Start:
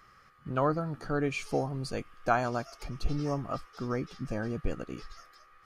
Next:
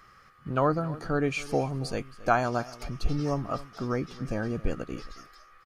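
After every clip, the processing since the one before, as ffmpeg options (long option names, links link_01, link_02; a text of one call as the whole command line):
ffmpeg -i in.wav -af "aecho=1:1:272:0.119,volume=3dB" out.wav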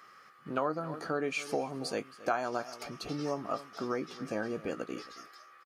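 ffmpeg -i in.wav -filter_complex "[0:a]highpass=270,acompressor=threshold=-30dB:ratio=2.5,asplit=2[link_01][link_02];[link_02]adelay=19,volume=-13dB[link_03];[link_01][link_03]amix=inputs=2:normalize=0" out.wav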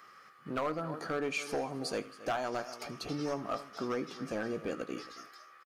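ffmpeg -i in.wav -filter_complex "[0:a]acrossover=split=4600[link_01][link_02];[link_01]asoftclip=type=hard:threshold=-27.5dB[link_03];[link_03][link_02]amix=inputs=2:normalize=0,aecho=1:1:78|156|234:0.126|0.0428|0.0146" out.wav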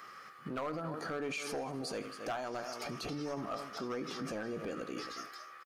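ffmpeg -i in.wav -af "alimiter=level_in=12.5dB:limit=-24dB:level=0:latency=1:release=34,volume=-12.5dB,volume=5dB" out.wav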